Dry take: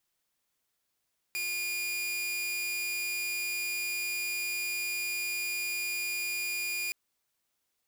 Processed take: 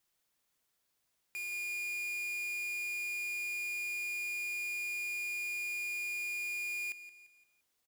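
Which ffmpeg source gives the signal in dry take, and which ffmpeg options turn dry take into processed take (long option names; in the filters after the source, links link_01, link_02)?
-f lavfi -i "aevalsrc='0.0376*(2*mod(2430*t,1)-1)':duration=5.57:sample_rate=44100"
-filter_complex "[0:a]asoftclip=type=hard:threshold=-38.5dB,asplit=2[link_01][link_02];[link_02]aecho=0:1:172|344|516|688:0.188|0.0829|0.0365|0.016[link_03];[link_01][link_03]amix=inputs=2:normalize=0"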